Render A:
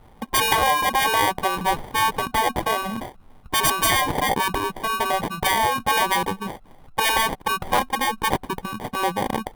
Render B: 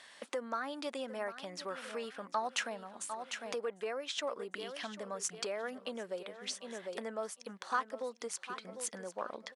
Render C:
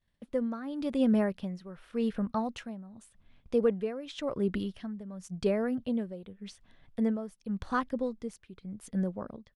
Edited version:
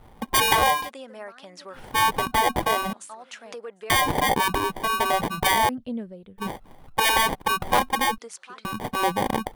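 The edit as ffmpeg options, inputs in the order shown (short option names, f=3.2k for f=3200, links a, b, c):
-filter_complex "[1:a]asplit=3[a][b][c];[0:a]asplit=5[d][e][f][g][h];[d]atrim=end=0.91[i];[a]atrim=start=0.67:end=1.97[j];[e]atrim=start=1.73:end=2.932[k];[b]atrim=start=2.928:end=3.902[l];[f]atrim=start=3.898:end=5.692[m];[2:a]atrim=start=5.688:end=6.382[n];[g]atrim=start=6.378:end=8.182[o];[c]atrim=start=8.178:end=8.652[p];[h]atrim=start=8.648[q];[i][j]acrossfade=d=0.24:c1=tri:c2=tri[r];[r][k]acrossfade=d=0.24:c1=tri:c2=tri[s];[s][l]acrossfade=d=0.004:c1=hsin:c2=hsin[t];[t][m]acrossfade=d=0.004:c1=hsin:c2=hsin[u];[u][n]acrossfade=d=0.004:c1=hsin:c2=hsin[v];[v][o]acrossfade=d=0.004:c1=hsin:c2=hsin[w];[w][p]acrossfade=d=0.004:c1=hsin:c2=hsin[x];[x][q]acrossfade=d=0.004:c1=hsin:c2=hsin"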